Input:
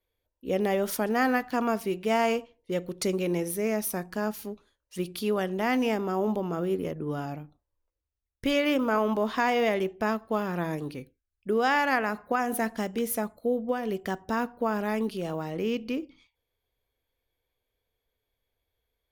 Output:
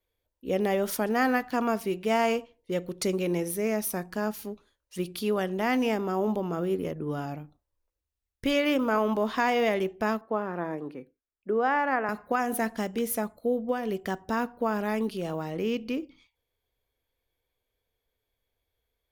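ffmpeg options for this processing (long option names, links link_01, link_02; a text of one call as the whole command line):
ffmpeg -i in.wav -filter_complex "[0:a]asettb=1/sr,asplit=3[link_01][link_02][link_03];[link_01]atrim=end=10.214[link_04];[link_02]atrim=start=10.21:end=12.09,asetpts=PTS-STARTPTS,afade=type=in:duration=0.004:curve=qsin,afade=type=out:start_time=1.876:duration=0.004:curve=qsin,acrossover=split=200 2000:gain=0.158 1 0.126[link_05][link_06][link_07];[link_05][link_06][link_07]amix=inputs=3:normalize=0[link_08];[link_03]atrim=start=12.086[link_09];[link_04][link_08]acrossfade=duration=0.004:curve1=hsin:curve2=qsin[link_10];[link_10][link_09]acrossfade=duration=0.004:curve1=qsin:curve2=hsin" out.wav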